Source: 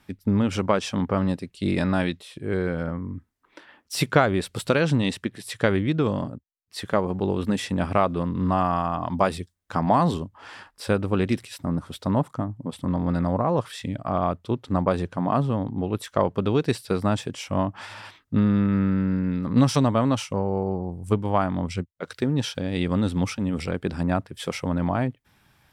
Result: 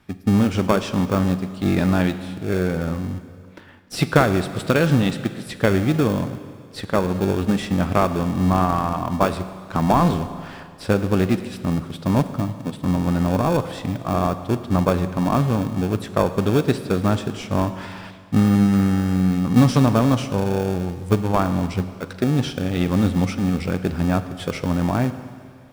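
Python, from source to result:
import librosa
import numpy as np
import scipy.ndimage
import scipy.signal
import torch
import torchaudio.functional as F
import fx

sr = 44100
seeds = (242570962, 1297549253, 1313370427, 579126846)

p1 = fx.high_shelf(x, sr, hz=4800.0, db=-6.0)
p2 = fx.sample_hold(p1, sr, seeds[0], rate_hz=1000.0, jitter_pct=0)
p3 = p1 + (p2 * librosa.db_to_amplitude(-8.0))
p4 = fx.rev_schroeder(p3, sr, rt60_s=2.1, comb_ms=33, drr_db=11.0)
y = p4 * librosa.db_to_amplitude(2.0)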